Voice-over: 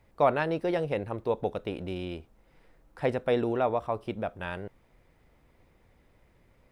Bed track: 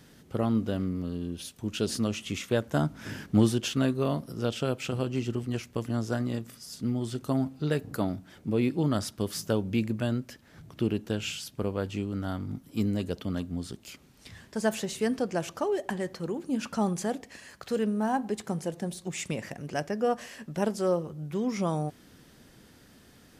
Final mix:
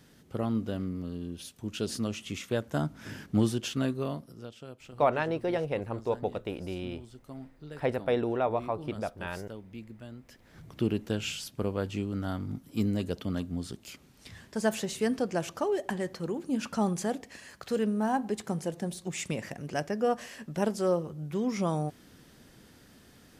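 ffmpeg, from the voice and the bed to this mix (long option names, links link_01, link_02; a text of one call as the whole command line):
ffmpeg -i stem1.wav -i stem2.wav -filter_complex "[0:a]adelay=4800,volume=-1.5dB[link_01];[1:a]volume=12.5dB,afade=type=out:start_time=3.92:duration=0.58:silence=0.223872,afade=type=in:start_time=10.19:duration=0.43:silence=0.158489[link_02];[link_01][link_02]amix=inputs=2:normalize=0" out.wav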